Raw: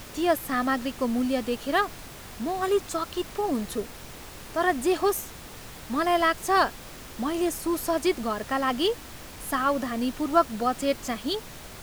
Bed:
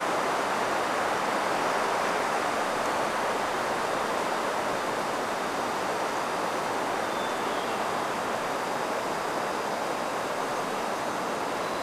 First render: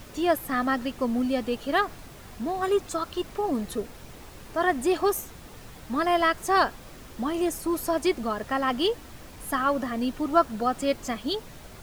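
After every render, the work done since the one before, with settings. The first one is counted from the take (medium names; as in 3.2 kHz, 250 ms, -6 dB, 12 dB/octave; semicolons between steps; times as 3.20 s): noise reduction 6 dB, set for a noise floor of -43 dBFS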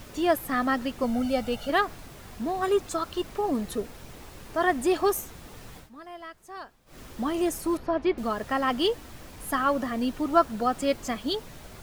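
1.03–1.70 s: comb 1.4 ms, depth 71%; 5.77–6.99 s: dip -19.5 dB, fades 0.13 s; 7.77–8.18 s: distance through air 320 m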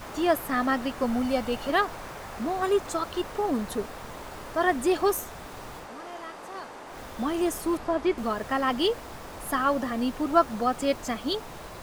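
add bed -14 dB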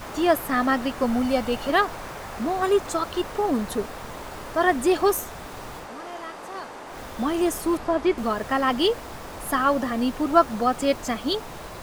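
trim +3.5 dB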